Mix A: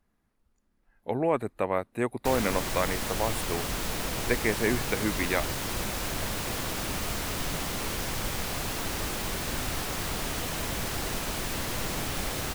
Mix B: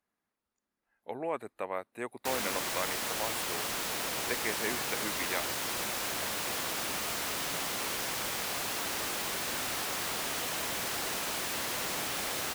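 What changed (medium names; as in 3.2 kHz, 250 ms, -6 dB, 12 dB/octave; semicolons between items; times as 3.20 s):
speech -5.5 dB; master: add high-pass 540 Hz 6 dB/octave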